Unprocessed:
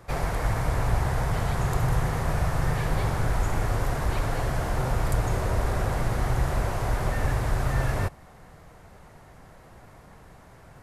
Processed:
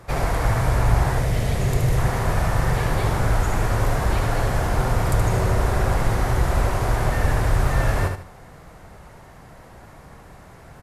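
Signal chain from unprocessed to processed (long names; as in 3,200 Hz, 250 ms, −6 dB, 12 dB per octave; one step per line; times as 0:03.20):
0:01.18–0:01.98: flat-topped bell 1,100 Hz −8.5 dB 1.3 octaves
repeating echo 74 ms, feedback 29%, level −6 dB
level +4.5 dB
Opus 96 kbit/s 48,000 Hz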